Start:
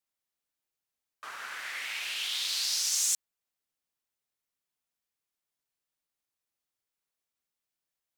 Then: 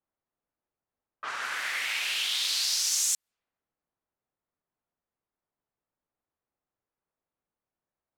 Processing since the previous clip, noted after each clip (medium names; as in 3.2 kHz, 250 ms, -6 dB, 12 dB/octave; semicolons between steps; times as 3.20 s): compression 2:1, threshold -36 dBFS, peak gain reduction 7 dB; level-controlled noise filter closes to 1.1 kHz, open at -36.5 dBFS; trim +7.5 dB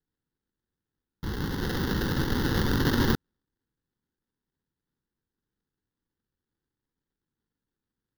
sample-rate reducer 1.2 kHz, jitter 20%; static phaser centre 2.4 kHz, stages 6; trim +6 dB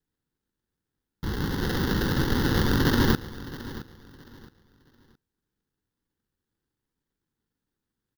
feedback delay 668 ms, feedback 27%, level -16 dB; trim +2.5 dB